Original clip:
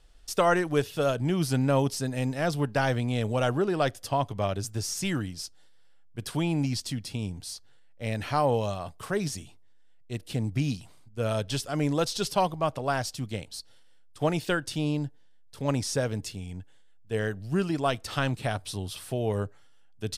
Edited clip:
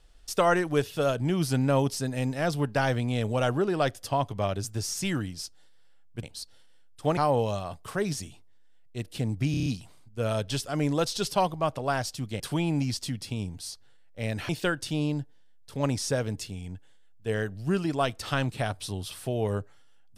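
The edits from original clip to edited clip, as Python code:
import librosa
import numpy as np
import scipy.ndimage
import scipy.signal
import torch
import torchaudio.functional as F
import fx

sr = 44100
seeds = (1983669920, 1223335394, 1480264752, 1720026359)

y = fx.edit(x, sr, fx.swap(start_s=6.23, length_s=2.09, other_s=13.4, other_length_s=0.94),
    fx.stutter(start_s=10.66, slice_s=0.03, count=6), tone=tone)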